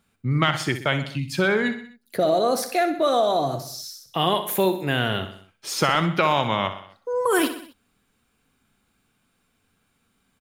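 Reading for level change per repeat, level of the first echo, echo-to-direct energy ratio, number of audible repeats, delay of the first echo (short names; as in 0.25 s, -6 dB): -5.5 dB, -11.0 dB, -9.5 dB, 4, 63 ms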